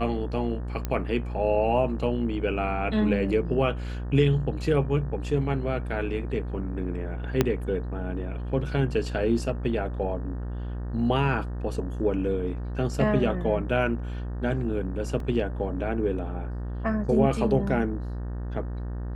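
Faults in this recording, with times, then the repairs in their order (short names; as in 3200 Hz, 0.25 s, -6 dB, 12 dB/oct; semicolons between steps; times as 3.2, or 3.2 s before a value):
buzz 60 Hz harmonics 31 -32 dBFS
0.85 pop -15 dBFS
7.41 pop -7 dBFS
15.2 gap 2.6 ms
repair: de-click; de-hum 60 Hz, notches 31; interpolate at 15.2, 2.6 ms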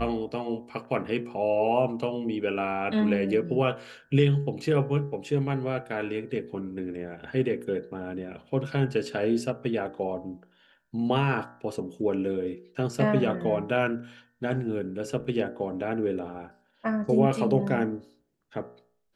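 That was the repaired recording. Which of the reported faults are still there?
7.41 pop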